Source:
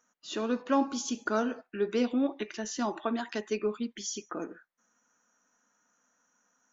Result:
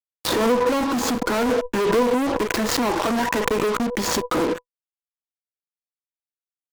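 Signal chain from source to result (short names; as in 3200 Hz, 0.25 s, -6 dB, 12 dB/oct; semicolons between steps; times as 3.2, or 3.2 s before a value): median filter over 15 samples; compressor 4:1, threshold -32 dBFS, peak gain reduction 9.5 dB; fuzz box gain 52 dB, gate -52 dBFS; small resonant body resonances 490/990 Hz, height 11 dB, ringing for 80 ms; backwards sustainer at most 28 dB/s; gain -7.5 dB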